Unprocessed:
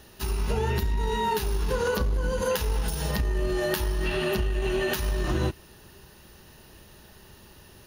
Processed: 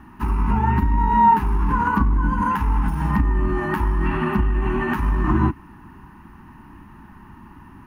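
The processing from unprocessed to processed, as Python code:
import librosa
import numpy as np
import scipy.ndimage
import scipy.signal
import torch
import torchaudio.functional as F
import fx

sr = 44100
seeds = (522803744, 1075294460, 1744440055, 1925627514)

y = fx.curve_eq(x, sr, hz=(130.0, 290.0, 510.0, 960.0, 1500.0, 2300.0, 3800.0, 6100.0, 9000.0), db=(0, 9, -25, 9, -1, -5, -25, -24, -21))
y = F.gain(torch.from_numpy(y), 7.0).numpy()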